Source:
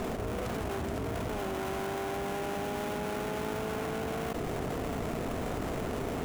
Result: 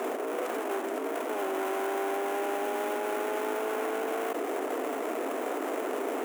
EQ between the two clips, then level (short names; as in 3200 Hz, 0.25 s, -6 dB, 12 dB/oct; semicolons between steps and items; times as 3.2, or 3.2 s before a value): steep high-pass 280 Hz 48 dB/oct; bell 4500 Hz -9.5 dB 0.97 oct; +4.5 dB